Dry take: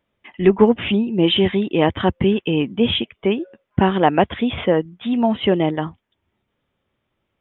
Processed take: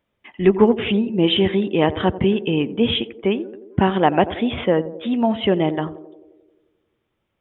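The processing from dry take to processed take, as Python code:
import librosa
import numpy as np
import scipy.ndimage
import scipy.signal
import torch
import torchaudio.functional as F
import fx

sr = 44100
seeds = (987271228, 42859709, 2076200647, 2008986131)

y = fx.echo_banded(x, sr, ms=88, feedback_pct=70, hz=420.0, wet_db=-13.5)
y = y * librosa.db_to_amplitude(-1.0)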